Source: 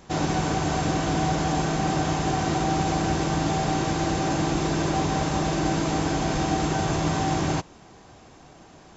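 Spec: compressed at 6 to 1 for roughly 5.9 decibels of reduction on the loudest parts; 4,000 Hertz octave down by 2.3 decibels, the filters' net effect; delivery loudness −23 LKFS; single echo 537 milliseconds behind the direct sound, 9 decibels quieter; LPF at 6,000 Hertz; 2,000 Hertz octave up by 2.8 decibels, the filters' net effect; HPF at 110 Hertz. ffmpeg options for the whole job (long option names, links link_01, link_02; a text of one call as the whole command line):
ffmpeg -i in.wav -af "highpass=110,lowpass=6000,equalizer=frequency=2000:width_type=o:gain=4.5,equalizer=frequency=4000:width_type=o:gain=-3.5,acompressor=threshold=-27dB:ratio=6,aecho=1:1:537:0.355,volume=7.5dB" out.wav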